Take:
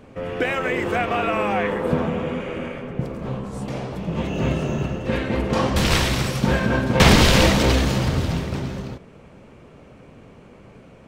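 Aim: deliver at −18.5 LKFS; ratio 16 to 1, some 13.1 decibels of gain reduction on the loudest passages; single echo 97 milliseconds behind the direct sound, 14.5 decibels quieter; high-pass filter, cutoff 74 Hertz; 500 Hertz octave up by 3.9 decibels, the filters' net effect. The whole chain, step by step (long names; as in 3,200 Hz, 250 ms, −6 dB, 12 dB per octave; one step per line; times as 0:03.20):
high-pass filter 74 Hz
parametric band 500 Hz +4.5 dB
downward compressor 16 to 1, threshold −21 dBFS
single-tap delay 97 ms −14.5 dB
level +8 dB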